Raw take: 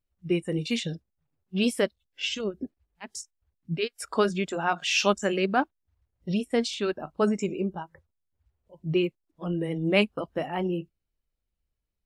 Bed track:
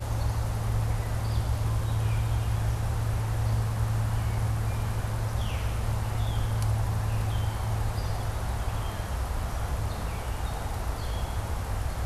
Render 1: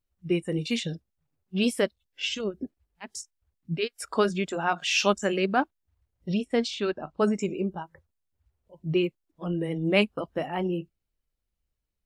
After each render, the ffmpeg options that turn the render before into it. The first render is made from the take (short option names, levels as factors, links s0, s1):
-filter_complex "[0:a]asettb=1/sr,asplit=3[s0][s1][s2];[s0]atrim=end=6.344[s3];[s1]atrim=start=6.34:end=7.19,asetpts=PTS-STARTPTS,afade=t=in:d=0.004:c=qsin,afade=t=out:st=0.846:d=0.004:c=qsin,lowpass=6500[s4];[s2]atrim=start=7.186[s5];[s3][s4]acrossfade=d=0.004:c1=hsin:c2=qsin[s6];[s6][s5]acrossfade=d=0.004:c1=qsin:c2=hsin"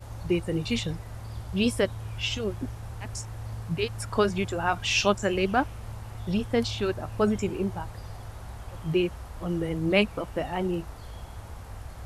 -filter_complex "[1:a]volume=0.316[s0];[0:a][s0]amix=inputs=2:normalize=0"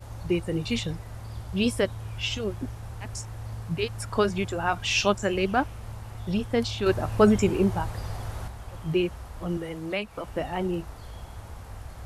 -filter_complex "[0:a]asettb=1/sr,asplit=3[s0][s1][s2];[s0]atrim=end=6.864[s3];[s1]atrim=start=6.86:end=8.48,asetpts=PTS-STARTPTS,afade=t=in:d=0.004:c=qsin,afade=t=out:st=1.616:d=0.004:c=qsin,acontrast=55[s4];[s2]atrim=start=8.476[s5];[s3][s4]acrossfade=d=0.004:c1=hsin:c2=qsin[s6];[s6][s5]acrossfade=d=0.004:c1=qsin:c2=hsin,asettb=1/sr,asplit=3[s7][s8][s9];[s7]atrim=end=9.574[s10];[s8]atrim=start=9.57:end=10.27,asetpts=PTS-STARTPTS,afade=t=in:d=0.004:c=qsin,afade=t=out:st=0.696:d=0.004:c=qsin,acrossover=split=270|550[s11][s12][s13];[s11]acompressor=threshold=0.00891:ratio=4[s14];[s12]acompressor=threshold=0.0112:ratio=4[s15];[s13]acompressor=threshold=0.0355:ratio=4[s16];[s14][s15][s16]amix=inputs=3:normalize=0[s17];[s9]atrim=start=10.266[s18];[s10][s17]acrossfade=d=0.004:c1=hsin:c2=qsin[s19];[s19][s18]acrossfade=d=0.004:c1=qsin:c2=hsin"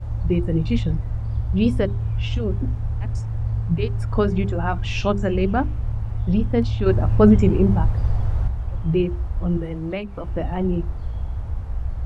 -af "aemphasis=mode=reproduction:type=riaa,bandreject=f=50:t=h:w=6,bandreject=f=100:t=h:w=6,bandreject=f=150:t=h:w=6,bandreject=f=200:t=h:w=6,bandreject=f=250:t=h:w=6,bandreject=f=300:t=h:w=6,bandreject=f=350:t=h:w=6,bandreject=f=400:t=h:w=6"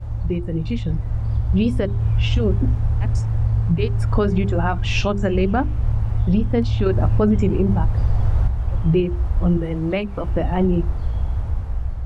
-af "alimiter=limit=0.2:level=0:latency=1:release=260,dynaudnorm=f=760:g=3:m=1.88"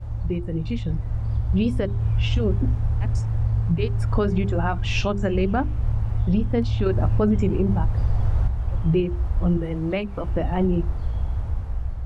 -af "volume=0.708"